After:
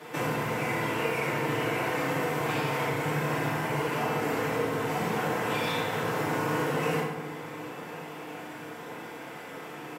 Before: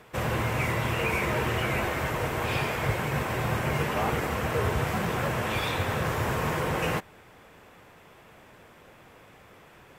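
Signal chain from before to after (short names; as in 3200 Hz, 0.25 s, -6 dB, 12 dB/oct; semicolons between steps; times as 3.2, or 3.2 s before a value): compressor 6:1, threshold -38 dBFS, peak gain reduction 15 dB; HPF 150 Hz 24 dB/oct; outdoor echo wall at 180 m, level -15 dB; FDN reverb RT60 1.2 s, low-frequency decay 1.05×, high-frequency decay 0.65×, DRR -9.5 dB; gain +1.5 dB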